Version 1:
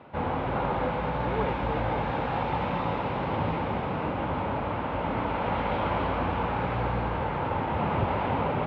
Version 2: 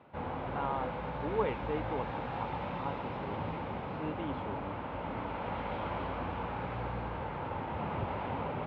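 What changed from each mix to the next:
background −9.0 dB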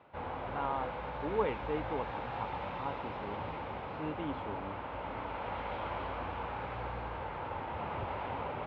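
background: add parametric band 180 Hz −8 dB 1.8 octaves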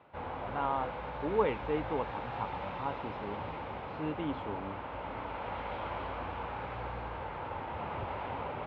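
speech +3.0 dB

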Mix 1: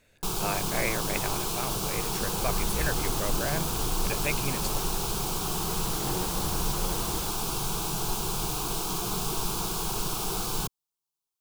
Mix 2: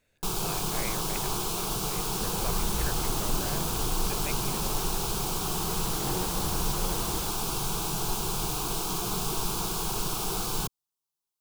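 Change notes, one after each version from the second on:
speech −8.5 dB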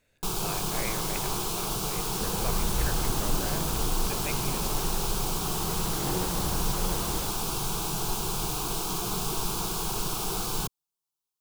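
reverb: on, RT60 2.1 s

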